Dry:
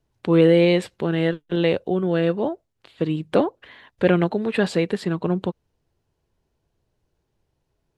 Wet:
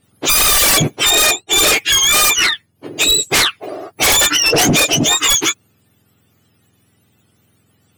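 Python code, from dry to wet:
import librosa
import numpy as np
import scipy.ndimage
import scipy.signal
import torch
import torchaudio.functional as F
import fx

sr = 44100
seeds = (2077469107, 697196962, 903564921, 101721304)

y = fx.octave_mirror(x, sr, pivot_hz=1100.0)
y = fx.fold_sine(y, sr, drive_db=17, ceiling_db=-6.5)
y = F.gain(torch.from_numpy(y), -2.0).numpy()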